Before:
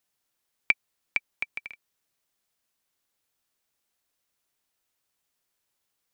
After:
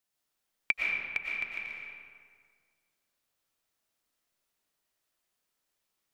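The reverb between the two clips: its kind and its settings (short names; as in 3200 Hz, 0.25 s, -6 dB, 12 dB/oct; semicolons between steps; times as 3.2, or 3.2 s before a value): digital reverb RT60 1.9 s, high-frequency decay 0.6×, pre-delay 75 ms, DRR -3 dB; gain -5.5 dB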